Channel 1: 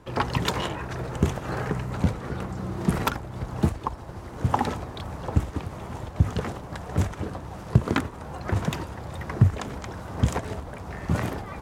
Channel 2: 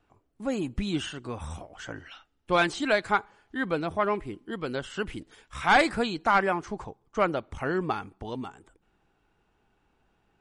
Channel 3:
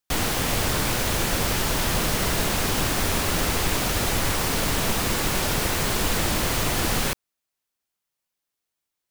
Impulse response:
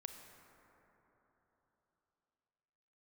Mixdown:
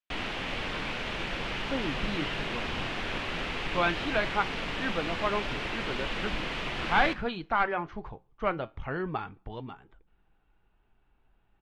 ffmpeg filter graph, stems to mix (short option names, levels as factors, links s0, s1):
-filter_complex "[1:a]asubboost=boost=3.5:cutoff=130,lowpass=f=3700:w=0.5412,lowpass=f=3700:w=1.3066,adelay=1250,volume=1.12[s0];[2:a]lowpass=f=2800:t=q:w=2,volume=0.531,asplit=2[s1][s2];[s2]volume=0.141,aecho=0:1:80|160|240|320|400|480|560:1|0.49|0.24|0.118|0.0576|0.0282|0.0138[s3];[s0][s1][s3]amix=inputs=3:normalize=0,flanger=delay=3:depth=5.5:regen=-77:speed=0.18:shape=sinusoidal,equalizer=f=78:t=o:w=1:g=-8.5"